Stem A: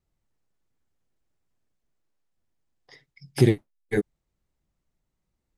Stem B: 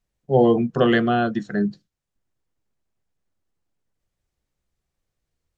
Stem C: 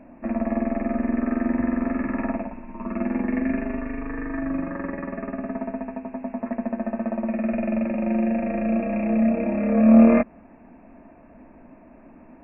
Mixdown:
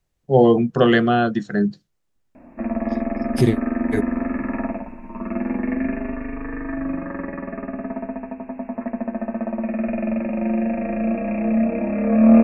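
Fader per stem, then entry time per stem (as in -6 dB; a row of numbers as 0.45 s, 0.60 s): +0.5 dB, +2.5 dB, +1.0 dB; 0.00 s, 0.00 s, 2.35 s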